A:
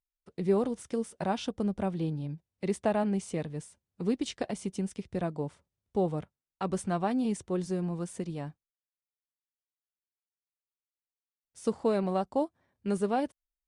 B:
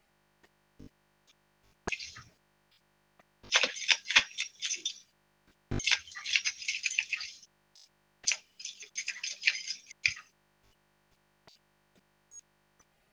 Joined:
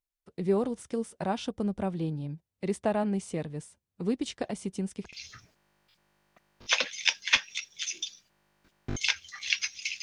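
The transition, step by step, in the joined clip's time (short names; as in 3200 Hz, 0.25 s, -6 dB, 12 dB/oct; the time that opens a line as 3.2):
A
4.18 add B from 1.01 s 0.95 s -17 dB
5.13 switch to B from 1.96 s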